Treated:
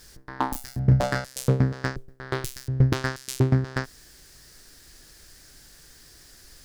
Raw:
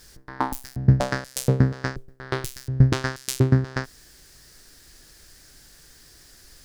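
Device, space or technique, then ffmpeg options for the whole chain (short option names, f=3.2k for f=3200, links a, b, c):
limiter into clipper: -filter_complex "[0:a]alimiter=limit=-8dB:level=0:latency=1:release=149,asoftclip=type=hard:threshold=-11dB,asettb=1/sr,asplit=3[a][b][c];[a]atrim=end=0.504[d];[b]atrim=start=0.5:end=1.25,asetpts=PTS-STARTPTS,afade=t=in:d=0.004:c=qsin,afade=t=out:st=0.746:d=0.004:c=qsin,asplit=2[e][f];[f]adelay=32,volume=-6dB[g];[e][g]amix=inputs=2:normalize=0,atrim=end_sample=33075[h];[c]atrim=start=1.246[i];[d][h]acrossfade=d=0.004:c1=hsin:c2=qsin[j];[j][i]acrossfade=d=0.004:c1=qsin:c2=hsin"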